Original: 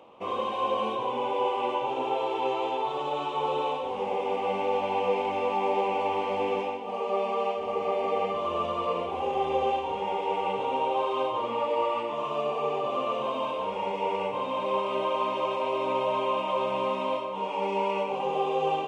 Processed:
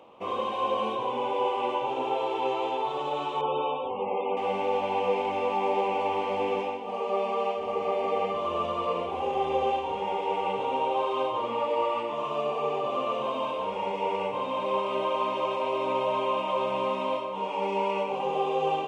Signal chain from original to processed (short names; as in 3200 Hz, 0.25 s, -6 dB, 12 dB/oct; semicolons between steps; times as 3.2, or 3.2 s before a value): 3.41–4.37 loudest bins only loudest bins 64